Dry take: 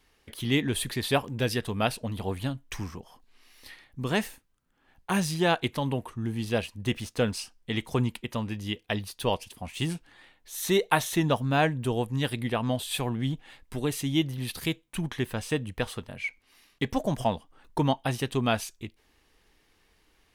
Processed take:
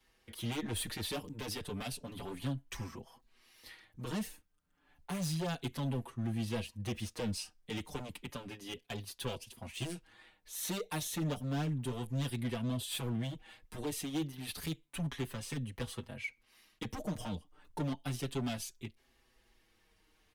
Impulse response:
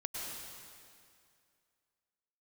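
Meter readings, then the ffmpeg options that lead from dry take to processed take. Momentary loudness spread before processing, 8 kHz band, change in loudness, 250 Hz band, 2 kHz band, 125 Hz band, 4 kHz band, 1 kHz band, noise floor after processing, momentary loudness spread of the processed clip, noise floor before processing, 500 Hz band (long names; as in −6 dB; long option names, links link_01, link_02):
13 LU, −5.5 dB, −9.5 dB, −9.0 dB, −13.0 dB, −7.5 dB, −9.0 dB, −14.5 dB, −72 dBFS, 10 LU, −67 dBFS, −13.0 dB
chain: -filter_complex "[0:a]acrossover=split=100|470|2800[link_01][link_02][link_03][link_04];[link_03]acompressor=threshold=-38dB:ratio=6[link_05];[link_01][link_02][link_05][link_04]amix=inputs=4:normalize=0,asoftclip=type=hard:threshold=-28dB,asplit=2[link_06][link_07];[link_07]adelay=5.7,afreqshift=-0.31[link_08];[link_06][link_08]amix=inputs=2:normalize=1,volume=-2dB"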